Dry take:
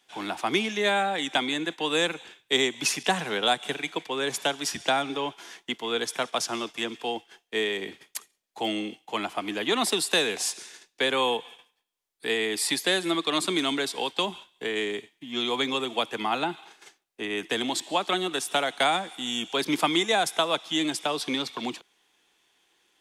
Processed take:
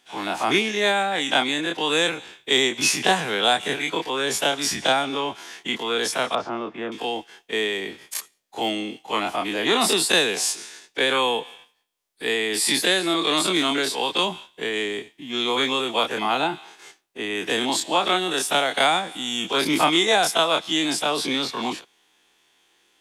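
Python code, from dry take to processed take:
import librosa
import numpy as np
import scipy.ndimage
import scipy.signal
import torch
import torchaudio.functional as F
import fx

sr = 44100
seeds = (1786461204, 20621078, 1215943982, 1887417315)

y = fx.spec_dilate(x, sr, span_ms=60)
y = fx.lowpass(y, sr, hz=1400.0, slope=12, at=(6.35, 6.92))
y = y * librosa.db_to_amplitude(1.0)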